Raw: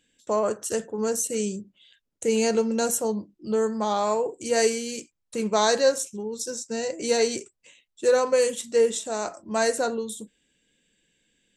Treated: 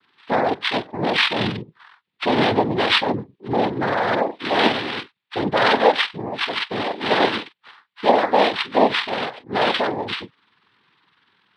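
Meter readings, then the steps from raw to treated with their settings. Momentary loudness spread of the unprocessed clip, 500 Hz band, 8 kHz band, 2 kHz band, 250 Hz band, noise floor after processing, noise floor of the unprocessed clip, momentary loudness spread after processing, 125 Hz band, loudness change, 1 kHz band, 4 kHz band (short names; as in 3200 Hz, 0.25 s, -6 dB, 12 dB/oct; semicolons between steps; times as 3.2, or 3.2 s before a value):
10 LU, +1.5 dB, under -15 dB, +11.5 dB, +5.0 dB, -68 dBFS, -78 dBFS, 10 LU, n/a, +4.5 dB, +9.5 dB, +11.0 dB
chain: nonlinear frequency compression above 1300 Hz 4:1; noise vocoder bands 6; gain +4 dB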